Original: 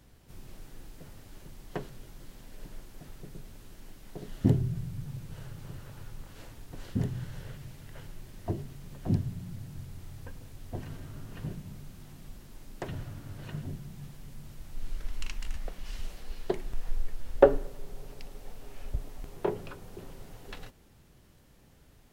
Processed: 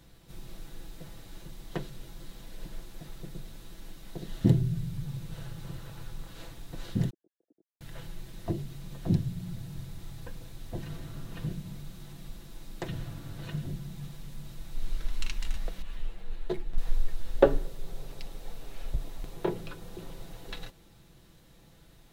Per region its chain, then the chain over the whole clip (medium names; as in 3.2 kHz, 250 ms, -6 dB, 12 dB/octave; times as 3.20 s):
7.10–7.81 s: formants replaced by sine waves + inverse Chebyshev low-pass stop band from 980 Hz, stop band 50 dB + differentiator
15.82–16.78 s: median filter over 9 samples + three-phase chorus
whole clip: peaking EQ 3.8 kHz +7.5 dB 0.25 oct; comb 6 ms, depth 43%; dynamic bell 830 Hz, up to -4 dB, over -47 dBFS, Q 0.75; trim +1.5 dB